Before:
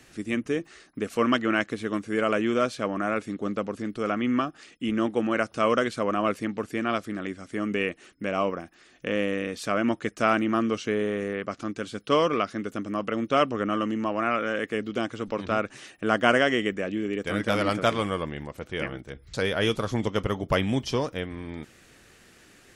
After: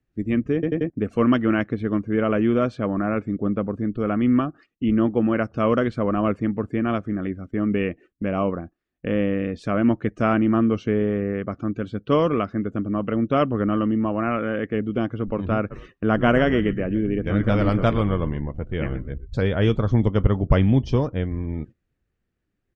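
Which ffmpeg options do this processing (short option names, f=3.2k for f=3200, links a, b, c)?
-filter_complex "[0:a]asplit=3[a][b][c];[a]afade=t=out:st=15.7:d=0.02[d];[b]asplit=4[e][f][g][h];[f]adelay=123,afreqshift=-84,volume=-14dB[i];[g]adelay=246,afreqshift=-168,volume=-24.5dB[j];[h]adelay=369,afreqshift=-252,volume=-34.9dB[k];[e][i][j][k]amix=inputs=4:normalize=0,afade=t=in:st=15.7:d=0.02,afade=t=out:st=19.47:d=0.02[l];[c]afade=t=in:st=19.47:d=0.02[m];[d][l][m]amix=inputs=3:normalize=0,asplit=5[n][o][p][q][r];[n]atrim=end=0.632[s];[o]atrim=start=0.538:end=0.632[t];[p]atrim=start=0.538:end=0.632[u];[q]atrim=start=0.538:end=0.632[v];[r]atrim=start=0.898[w];[s][t]acrossfade=d=0.004:c1=hsin:c2=hsin[x];[x][u]acrossfade=d=0.004:c1=hsin:c2=hsin[y];[y][v]acrossfade=d=0.004:c1=hsin:c2=hsin[z];[z][w]acrossfade=d=0.004:c1=hsin:c2=hsin,agate=range=-8dB:threshold=-46dB:ratio=16:detection=peak,afftdn=nr=21:nf=-46,aemphasis=mode=reproduction:type=riaa"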